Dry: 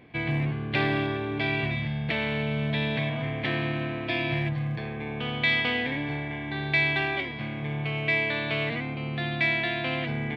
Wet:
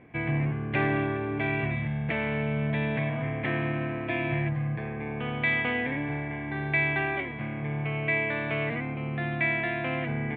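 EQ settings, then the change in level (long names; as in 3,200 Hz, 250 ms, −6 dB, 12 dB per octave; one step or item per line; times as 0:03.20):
low-pass filter 2,400 Hz 24 dB per octave
0.0 dB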